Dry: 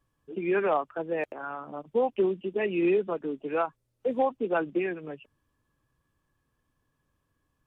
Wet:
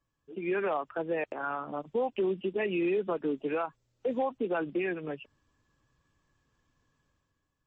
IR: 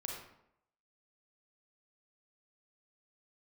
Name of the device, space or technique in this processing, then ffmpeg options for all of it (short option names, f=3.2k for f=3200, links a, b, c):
low-bitrate web radio: -af "highshelf=f=2.4k:g=4,dynaudnorm=f=130:g=9:m=9dB,alimiter=limit=-15.5dB:level=0:latency=1:release=112,volume=-6.5dB" -ar 32000 -c:a libmp3lame -b:a 32k